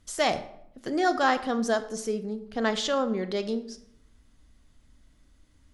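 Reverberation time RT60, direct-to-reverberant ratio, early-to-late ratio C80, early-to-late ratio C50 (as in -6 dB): 0.70 s, 11.0 dB, 16.0 dB, 13.5 dB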